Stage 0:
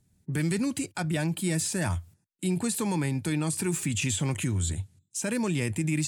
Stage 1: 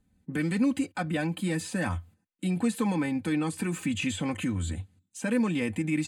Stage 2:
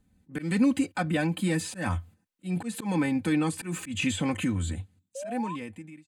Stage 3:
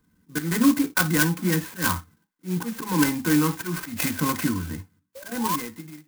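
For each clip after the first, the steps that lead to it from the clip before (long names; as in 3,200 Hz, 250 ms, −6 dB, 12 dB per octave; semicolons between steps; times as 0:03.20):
bass and treble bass −1 dB, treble −12 dB; notch filter 5,500 Hz, Q 8.4; comb filter 3.9 ms, depth 73%
fade-out on the ending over 1.71 s; volume swells 143 ms; sound drawn into the spectrogram rise, 0:05.15–0:05.56, 520–1,100 Hz −39 dBFS; level +2.5 dB
phaser with its sweep stopped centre 1,500 Hz, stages 4; convolution reverb, pre-delay 3 ms, DRR 9.5 dB; converter with an unsteady clock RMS 0.087 ms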